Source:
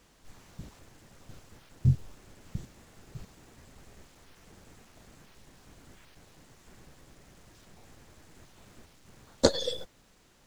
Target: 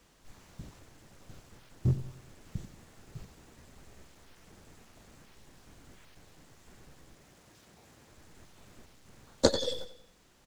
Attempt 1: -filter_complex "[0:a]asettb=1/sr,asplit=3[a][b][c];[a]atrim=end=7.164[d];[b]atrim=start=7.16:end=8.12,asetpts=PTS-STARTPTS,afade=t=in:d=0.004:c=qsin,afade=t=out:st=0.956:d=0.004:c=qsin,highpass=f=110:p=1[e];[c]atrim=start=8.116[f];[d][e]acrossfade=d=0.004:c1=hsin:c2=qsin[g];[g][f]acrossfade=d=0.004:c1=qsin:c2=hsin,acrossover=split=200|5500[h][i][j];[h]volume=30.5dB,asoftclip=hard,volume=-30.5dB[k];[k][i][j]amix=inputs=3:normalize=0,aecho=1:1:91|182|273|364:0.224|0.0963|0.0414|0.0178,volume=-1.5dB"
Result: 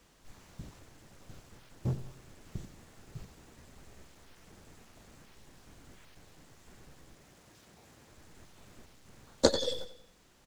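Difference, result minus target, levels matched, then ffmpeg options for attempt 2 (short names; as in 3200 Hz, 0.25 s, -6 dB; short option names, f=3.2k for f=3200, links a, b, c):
overloaded stage: distortion +8 dB
-filter_complex "[0:a]asettb=1/sr,asplit=3[a][b][c];[a]atrim=end=7.164[d];[b]atrim=start=7.16:end=8.12,asetpts=PTS-STARTPTS,afade=t=in:d=0.004:c=qsin,afade=t=out:st=0.956:d=0.004:c=qsin,highpass=f=110:p=1[e];[c]atrim=start=8.116[f];[d][e]acrossfade=d=0.004:c1=hsin:c2=qsin[g];[g][f]acrossfade=d=0.004:c1=qsin:c2=hsin,acrossover=split=200|5500[h][i][j];[h]volume=21.5dB,asoftclip=hard,volume=-21.5dB[k];[k][i][j]amix=inputs=3:normalize=0,aecho=1:1:91|182|273|364:0.224|0.0963|0.0414|0.0178,volume=-1.5dB"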